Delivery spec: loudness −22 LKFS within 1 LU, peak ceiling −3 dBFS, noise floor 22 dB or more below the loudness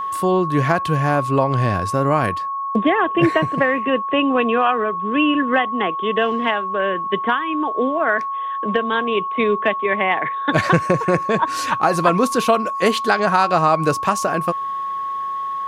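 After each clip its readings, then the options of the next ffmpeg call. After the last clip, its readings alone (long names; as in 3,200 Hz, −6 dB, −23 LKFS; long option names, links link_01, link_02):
interfering tone 1,100 Hz; level of the tone −22 dBFS; integrated loudness −19.0 LKFS; sample peak −1.5 dBFS; target loudness −22.0 LKFS
→ -af "bandreject=frequency=1100:width=30"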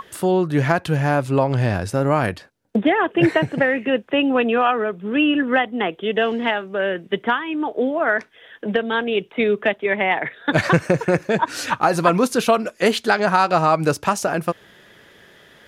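interfering tone none found; integrated loudness −20.0 LKFS; sample peak −2.0 dBFS; target loudness −22.0 LKFS
→ -af "volume=-2dB"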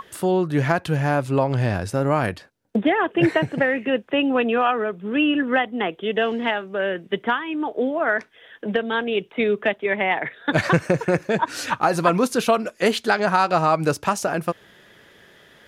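integrated loudness −22.0 LKFS; sample peak −4.0 dBFS; background noise floor −53 dBFS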